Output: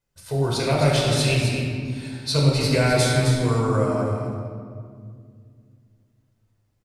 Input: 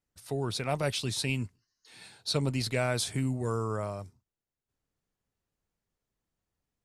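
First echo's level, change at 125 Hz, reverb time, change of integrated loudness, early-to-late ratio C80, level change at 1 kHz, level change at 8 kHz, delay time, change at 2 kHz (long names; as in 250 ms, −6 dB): −6.5 dB, +12.5 dB, 2.1 s, +10.0 dB, 0.0 dB, +10.5 dB, +8.0 dB, 260 ms, +10.5 dB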